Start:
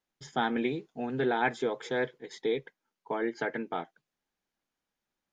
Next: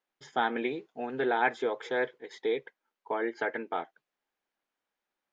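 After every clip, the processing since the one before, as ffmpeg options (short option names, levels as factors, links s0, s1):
-af "bass=f=250:g=-14,treble=f=4000:g=-9,volume=1.26"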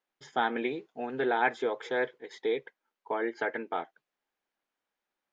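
-af anull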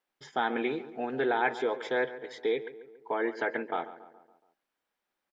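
-filter_complex "[0:a]asplit=2[s0][s1];[s1]alimiter=limit=0.0708:level=0:latency=1,volume=1.26[s2];[s0][s2]amix=inputs=2:normalize=0,bandreject=f=6600:w=14,asplit=2[s3][s4];[s4]adelay=140,lowpass=f=2000:p=1,volume=0.2,asplit=2[s5][s6];[s6]adelay=140,lowpass=f=2000:p=1,volume=0.54,asplit=2[s7][s8];[s8]adelay=140,lowpass=f=2000:p=1,volume=0.54,asplit=2[s9][s10];[s10]adelay=140,lowpass=f=2000:p=1,volume=0.54,asplit=2[s11][s12];[s12]adelay=140,lowpass=f=2000:p=1,volume=0.54[s13];[s3][s5][s7][s9][s11][s13]amix=inputs=6:normalize=0,volume=0.562"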